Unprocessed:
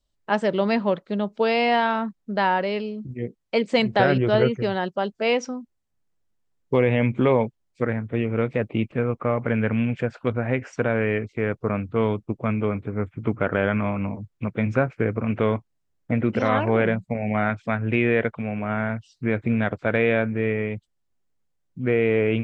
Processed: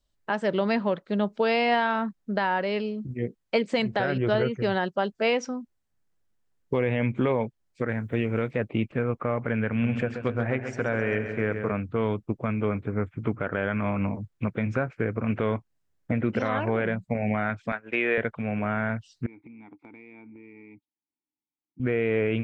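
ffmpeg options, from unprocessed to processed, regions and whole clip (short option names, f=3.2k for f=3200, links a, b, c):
-filter_complex "[0:a]asettb=1/sr,asplit=3[a][b][c];[a]atrim=end=7.894[d];[b]atrim=start=7.89:end=8.51,asetpts=PTS-STARTPTS,afade=t=in:d=0.004:c=qsin,afade=t=out:st=0.616:d=0.004:c=qsin,aemphasis=mode=production:type=50kf,bandreject=f=1.2k:w=21[e];[c]atrim=start=8.506[f];[d][e]acrossfade=d=0.004:c1=hsin:c2=qsin[g];[g][f]acrossfade=d=0.004:c1=qsin:c2=hsin,asettb=1/sr,asplit=3[h][i][j];[h]atrim=end=9.684[k];[i]atrim=start=9.68:end=11.72,asetpts=PTS-STARTPTS,afade=t=in:d=0.004:c=qsin,afade=t=out:st=2.036:d=0.004:c=qsin,bandreject=f=50:t=h:w=6,bandreject=f=100:t=h:w=6,bandreject=f=150:t=h:w=6,bandreject=f=200:t=h:w=6,bandreject=f=250:t=h:w=6,bandreject=f=300:t=h:w=6,bandreject=f=350:t=h:w=6,bandreject=f=400:t=h:w=6,bandreject=f=450:t=h:w=6,aecho=1:1:132|264|396|528|660|792|924:0.335|0.188|0.105|0.0588|0.0329|0.0184|0.0103,atrim=end_sample=89964[l];[j]atrim=start=11.716[m];[k][l]acrossfade=d=0.004:c1=hsin:c2=qsin[n];[n][m]acrossfade=d=0.004:c1=qsin:c2=hsin,asettb=1/sr,asplit=3[o][p][q];[o]atrim=end=17.724[r];[p]atrim=start=17.72:end=18.18,asetpts=PTS-STARTPTS,afade=t=in:d=0.004:c=qsin,afade=t=out:st=0.456:d=0.004:c=qsin,highpass=420,agate=range=-33dB:threshold=-31dB:ratio=3:release=100:detection=peak[s];[q]atrim=start=18.176[t];[r][s]acrossfade=d=0.004:c1=hsin:c2=qsin[u];[u][t]acrossfade=d=0.004:c1=qsin:c2=hsin,asettb=1/sr,asplit=3[v][w][x];[v]atrim=end=19.264[y];[w]atrim=start=19.26:end=21.8,asetpts=PTS-STARTPTS,afade=t=in:d=0.004:c=qsin,afade=t=out:st=2.536:d=0.004:c=qsin,asplit=3[z][aa][ab];[z]bandpass=f=300:t=q:w=8,volume=0dB[ac];[aa]bandpass=f=870:t=q:w=8,volume=-6dB[ad];[ab]bandpass=f=2.24k:t=q:w=8,volume=-9dB[ae];[ac][ad][ae]amix=inputs=3:normalize=0,bandreject=f=3k:w=5.9,acompressor=threshold=-44dB:ratio=8:attack=3.2:release=140:knee=1:detection=peak[af];[x]atrim=start=21.796[ag];[y][af]acrossfade=d=0.004:c1=hsin:c2=qsin[ah];[ah][ag]acrossfade=d=0.004:c1=qsin:c2=hsin,equalizer=f=1.6k:t=o:w=0.53:g=3,alimiter=limit=-14dB:level=0:latency=1:release=305"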